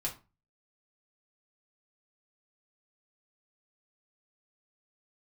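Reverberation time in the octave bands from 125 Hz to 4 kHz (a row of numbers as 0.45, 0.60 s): 0.50, 0.40, 0.30, 0.30, 0.25, 0.20 s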